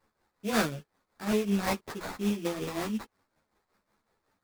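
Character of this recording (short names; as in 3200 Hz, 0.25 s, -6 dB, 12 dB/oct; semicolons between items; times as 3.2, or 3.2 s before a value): a quantiser's noise floor 12-bit, dither triangular; tremolo triangle 5.4 Hz, depth 75%; aliases and images of a low sample rate 3000 Hz, jitter 20%; a shimmering, thickened sound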